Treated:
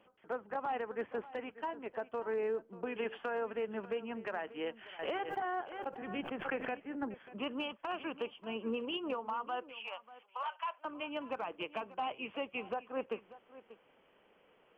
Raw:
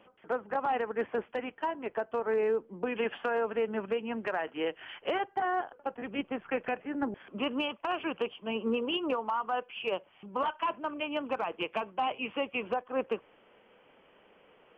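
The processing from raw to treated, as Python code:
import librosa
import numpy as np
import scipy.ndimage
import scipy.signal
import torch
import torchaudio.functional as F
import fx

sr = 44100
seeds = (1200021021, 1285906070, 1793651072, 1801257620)

y = fx.highpass(x, sr, hz=720.0, slope=24, at=(9.77, 10.85))
y = y + 10.0 ** (-17.0 / 20.0) * np.pad(y, (int(589 * sr / 1000.0), 0))[:len(y)]
y = fx.pre_swell(y, sr, db_per_s=64.0, at=(4.99, 6.7))
y = F.gain(torch.from_numpy(y), -6.5).numpy()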